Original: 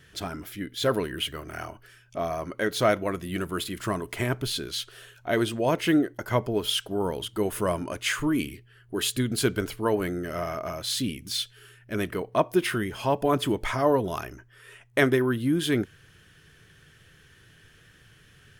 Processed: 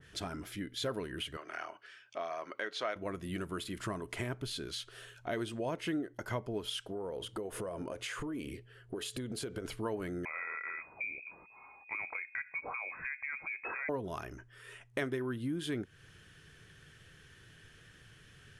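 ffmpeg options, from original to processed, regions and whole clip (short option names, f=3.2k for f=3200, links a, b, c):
-filter_complex "[0:a]asettb=1/sr,asplit=3[a][b][c];[a]atrim=end=1.374[d];[b]atrim=start=1.37:end=2.96,asetpts=PTS-STARTPTS,afade=t=in:d=0.004:c=qsin,afade=t=out:st=1.586:d=0.004:c=qsin,highpass=370,lowpass=4.2k,tiltshelf=f=940:g=-4.5[e];[c]atrim=start=2.956[f];[d][e]acrossfade=d=0.004:c1=hsin:c2=qsin[g];[g][f]acrossfade=d=0.004:c1=qsin:c2=hsin,asettb=1/sr,asplit=3[h][i][j];[h]atrim=end=6.894[k];[i]atrim=start=6.89:end=9.65,asetpts=PTS-STARTPTS,afade=t=in:d=0.004:c=qsin,afade=t=out:st=2.756:d=0.004:c=qsin,equalizer=f=540:t=o:w=0.83:g=12.5,bandreject=f=590:w=8.4,acompressor=threshold=-31dB:ratio=5:attack=3.2:release=140:knee=1:detection=peak[l];[j]atrim=start=9.646[m];[k][l]acrossfade=d=0.004:c1=hsin:c2=qsin[n];[n][m]acrossfade=d=0.004:c1=qsin:c2=hsin,asettb=1/sr,asplit=3[o][p][q];[o]atrim=end=10.254[r];[p]atrim=start=10.25:end=13.89,asetpts=PTS-STARTPTS,afade=t=in:d=0.004:c=qsin,afade=t=out:st=3.636:d=0.004:c=qsin,acompressor=threshold=-28dB:ratio=2.5:attack=3.2:release=140:knee=1:detection=peak,lowpass=f=2.2k:t=q:w=0.5098,lowpass=f=2.2k:t=q:w=0.6013,lowpass=f=2.2k:t=q:w=0.9,lowpass=f=2.2k:t=q:w=2.563,afreqshift=-2600[s];[q]atrim=start=13.886[t];[r][s]acrossfade=d=0.004:c1=hsin:c2=qsin[u];[u][t]acrossfade=d=0.004:c1=qsin:c2=hsin,lowpass=f=11k:w=0.5412,lowpass=f=11k:w=1.3066,acompressor=threshold=-35dB:ratio=2.5,adynamicequalizer=threshold=0.00447:dfrequency=2100:dqfactor=0.7:tfrequency=2100:tqfactor=0.7:attack=5:release=100:ratio=0.375:range=1.5:mode=cutabove:tftype=highshelf,volume=-2.5dB"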